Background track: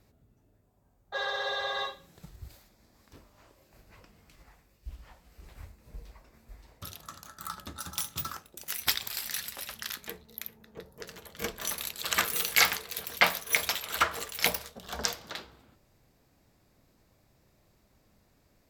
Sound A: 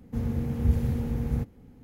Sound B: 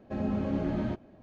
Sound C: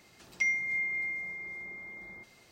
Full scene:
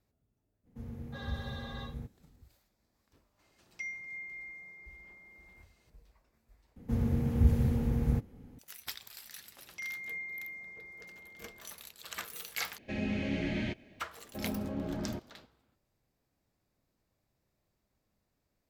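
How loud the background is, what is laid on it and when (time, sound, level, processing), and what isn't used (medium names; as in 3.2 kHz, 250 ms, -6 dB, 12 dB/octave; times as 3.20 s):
background track -14 dB
0.63 s: add A -14.5 dB, fades 0.05 s
3.39 s: add C -11.5 dB
6.76 s: replace with A -1 dB
9.38 s: add C -8.5 dB + peak limiter -26 dBFS
12.78 s: replace with B -3.5 dB + resonant high shelf 1.6 kHz +10.5 dB, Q 3
14.24 s: add B -6.5 dB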